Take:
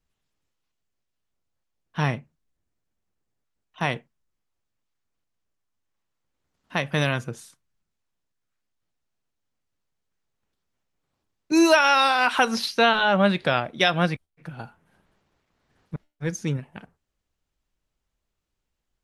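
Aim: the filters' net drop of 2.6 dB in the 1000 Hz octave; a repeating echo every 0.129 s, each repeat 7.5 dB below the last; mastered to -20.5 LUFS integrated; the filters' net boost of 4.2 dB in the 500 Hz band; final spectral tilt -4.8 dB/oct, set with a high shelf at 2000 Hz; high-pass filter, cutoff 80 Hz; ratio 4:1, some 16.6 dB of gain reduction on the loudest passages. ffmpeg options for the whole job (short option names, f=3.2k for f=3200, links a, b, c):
-af "highpass=80,equalizer=f=500:t=o:g=8,equalizer=f=1k:t=o:g=-5,highshelf=f=2k:g=-8,acompressor=threshold=-32dB:ratio=4,aecho=1:1:129|258|387|516|645:0.422|0.177|0.0744|0.0312|0.0131,volume=15dB"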